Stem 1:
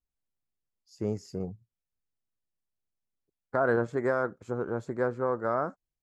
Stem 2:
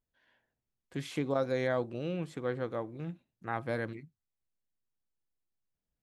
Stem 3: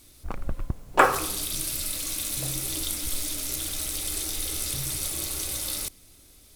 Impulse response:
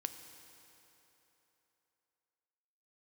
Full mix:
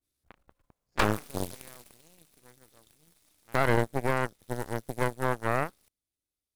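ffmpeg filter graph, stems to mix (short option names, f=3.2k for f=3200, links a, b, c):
-filter_complex "[0:a]bass=f=250:g=4,treble=f=4k:g=-5,volume=-3dB[a];[1:a]adynamicequalizer=threshold=0.00562:dfrequency=610:dqfactor=1.2:tfrequency=610:tqfactor=1.2:attack=5:release=100:ratio=0.375:range=2:mode=cutabove:tftype=bell,volume=-12.5dB[b];[2:a]highpass=f=51:p=1,acrossover=split=470[c][d];[c]acompressor=threshold=-40dB:ratio=6[e];[e][d]amix=inputs=2:normalize=0,volume=-10.5dB,afade=t=out:st=1.5:d=0.72:silence=0.375837[f];[a][b][f]amix=inputs=3:normalize=0,aeval=exprs='0.188*(cos(1*acos(clip(val(0)/0.188,-1,1)))-cos(1*PI/2))+0.075*(cos(4*acos(clip(val(0)/0.188,-1,1)))-cos(4*PI/2))+0.0237*(cos(7*acos(clip(val(0)/0.188,-1,1)))-cos(7*PI/2))':c=same,adynamicequalizer=threshold=0.0112:dfrequency=1800:dqfactor=0.7:tfrequency=1800:tqfactor=0.7:attack=5:release=100:ratio=0.375:range=2:mode=cutabove:tftype=highshelf"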